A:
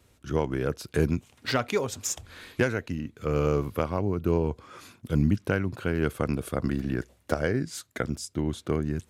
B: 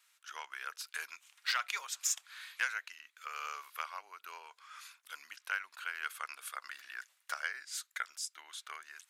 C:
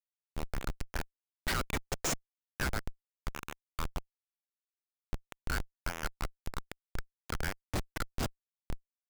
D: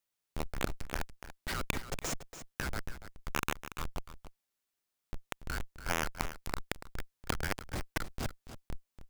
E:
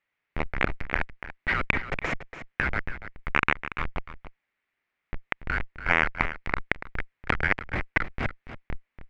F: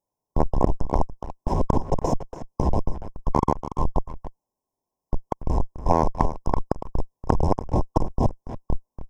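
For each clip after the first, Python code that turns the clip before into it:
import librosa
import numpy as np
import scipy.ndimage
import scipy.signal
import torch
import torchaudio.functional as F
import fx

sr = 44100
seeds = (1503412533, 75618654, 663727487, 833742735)

y1 = scipy.signal.sosfilt(scipy.signal.butter(4, 1200.0, 'highpass', fs=sr, output='sos'), x)
y1 = y1 * 10.0 ** (-2.0 / 20.0)
y2 = fx.schmitt(y1, sr, flips_db=-32.5)
y2 = y2 * 10.0 ** (11.5 / 20.0)
y3 = fx.over_compress(y2, sr, threshold_db=-38.0, ratio=-1.0)
y3 = y3 + 10.0 ** (-12.0 / 20.0) * np.pad(y3, (int(286 * sr / 1000.0), 0))[:len(y3)]
y3 = y3 * 10.0 ** (4.5 / 20.0)
y4 = fx.lowpass_res(y3, sr, hz=2100.0, q=3.5)
y4 = y4 * 10.0 ** (6.5 / 20.0)
y5 = fx.brickwall_bandstop(y4, sr, low_hz=1100.0, high_hz=5000.0)
y5 = fx.leveller(y5, sr, passes=1)
y5 = y5 * 10.0 ** (6.5 / 20.0)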